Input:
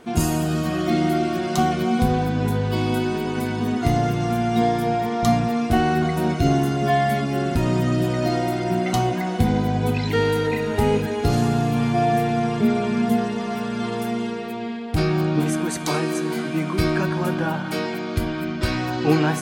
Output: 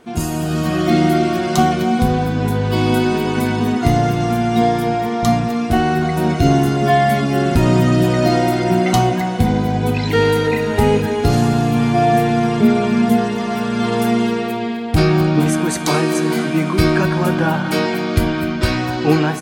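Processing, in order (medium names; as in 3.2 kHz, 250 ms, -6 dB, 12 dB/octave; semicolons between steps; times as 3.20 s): level rider; on a send: feedback delay 255 ms, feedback 38%, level -18 dB; on the sum: trim -1 dB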